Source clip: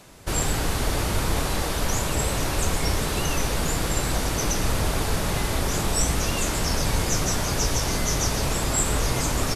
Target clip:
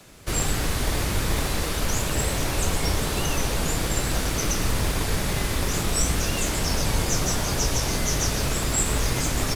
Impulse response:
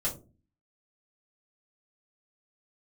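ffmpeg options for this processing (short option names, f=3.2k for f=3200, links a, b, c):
-filter_complex "[0:a]acrossover=split=120|940[a][b][c];[b]acrusher=samples=21:mix=1:aa=0.000001:lfo=1:lforange=21:lforate=0.24[d];[a][d][c]amix=inputs=3:normalize=0"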